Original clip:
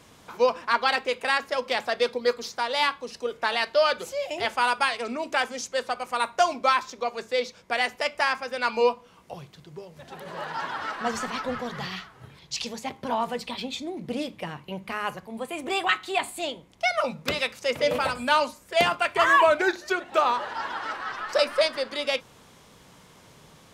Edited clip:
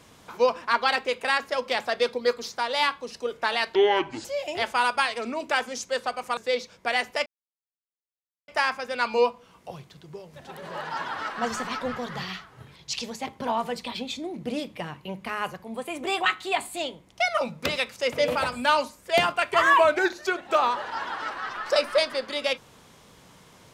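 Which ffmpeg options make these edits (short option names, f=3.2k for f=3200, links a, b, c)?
-filter_complex "[0:a]asplit=5[a][b][c][d][e];[a]atrim=end=3.754[f];[b]atrim=start=3.75:end=4.08,asetpts=PTS-STARTPTS,asetrate=29106,aresample=44100[g];[c]atrim=start=4.076:end=6.202[h];[d]atrim=start=7.218:end=8.11,asetpts=PTS-STARTPTS,afade=t=out:st=0.888:d=0.004:c=hsin,apad=pad_dur=1.22[i];[e]atrim=start=8.11,asetpts=PTS-STARTPTS,afade=t=in:d=0.004:c=hsin[j];[f][g]acrossfade=d=0.004:c1=hsin:c2=hsin[k];[k][h]acrossfade=d=0.004:c1=hsin:c2=hsin[l];[i][j]concat=n=2:v=0:a=1[m];[l][m]acrossfade=d=0.004:c1=hsin:c2=hsin"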